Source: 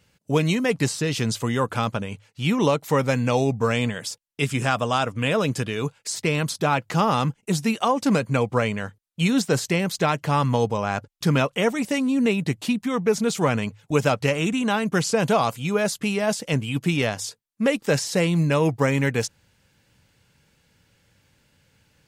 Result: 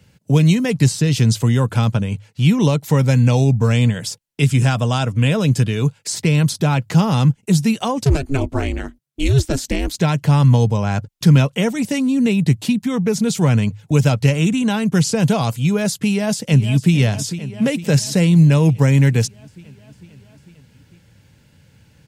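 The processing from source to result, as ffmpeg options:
-filter_complex "[0:a]asplit=3[a][b][c];[a]afade=t=out:st=8.04:d=0.02[d];[b]aeval=exprs='val(0)*sin(2*PI*140*n/s)':c=same,afade=t=in:st=8.04:d=0.02,afade=t=out:st=9.97:d=0.02[e];[c]afade=t=in:st=9.97:d=0.02[f];[d][e][f]amix=inputs=3:normalize=0,asplit=2[g][h];[h]afade=t=in:st=16.03:d=0.01,afade=t=out:st=16.93:d=0.01,aecho=0:1:450|900|1350|1800|2250|2700|3150|3600|4050:0.199526|0.139668|0.0977679|0.0684375|0.0479062|0.0335344|0.0234741|0.0164318|0.0115023[i];[g][i]amix=inputs=2:normalize=0,equalizer=f=120:t=o:w=2.5:g=9,bandreject=f=1.2k:w=12,acrossover=split=170|3000[j][k][l];[k]acompressor=threshold=-35dB:ratio=1.5[m];[j][m][l]amix=inputs=3:normalize=0,volume=5dB"

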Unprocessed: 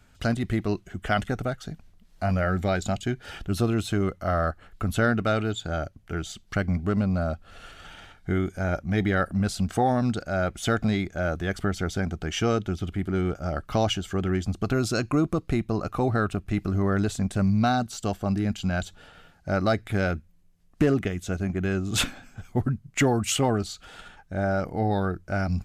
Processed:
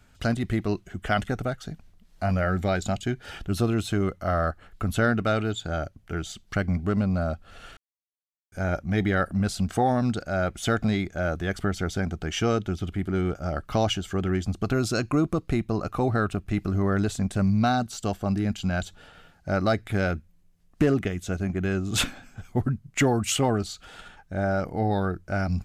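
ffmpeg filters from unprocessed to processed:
-filter_complex "[0:a]asplit=3[a][b][c];[a]atrim=end=7.77,asetpts=PTS-STARTPTS,afade=t=out:st=7.766:d=0.004:c=hsin[d];[b]atrim=start=7.77:end=8.52,asetpts=PTS-STARTPTS,volume=0[e];[c]atrim=start=8.52,asetpts=PTS-STARTPTS,afade=t=in:d=0.004:c=hsin[f];[d][e][f]concat=n=3:v=0:a=1"

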